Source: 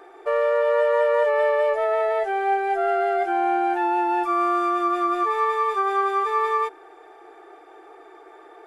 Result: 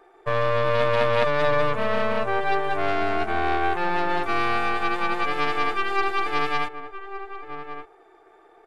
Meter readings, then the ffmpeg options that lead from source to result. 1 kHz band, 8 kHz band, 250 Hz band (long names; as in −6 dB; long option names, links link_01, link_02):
−3.0 dB, can't be measured, −1.5 dB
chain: -filter_complex "[0:a]aeval=exprs='0.282*(cos(1*acos(clip(val(0)/0.282,-1,1)))-cos(1*PI/2))+0.1*(cos(2*acos(clip(val(0)/0.282,-1,1)))-cos(2*PI/2))+0.0562*(cos(3*acos(clip(val(0)/0.282,-1,1)))-cos(3*PI/2))+0.1*(cos(4*acos(clip(val(0)/0.282,-1,1)))-cos(4*PI/2))':channel_layout=same,asplit=2[link_01][link_02];[link_02]adelay=1166,volume=-9dB,highshelf=frequency=4000:gain=-26.2[link_03];[link_01][link_03]amix=inputs=2:normalize=0"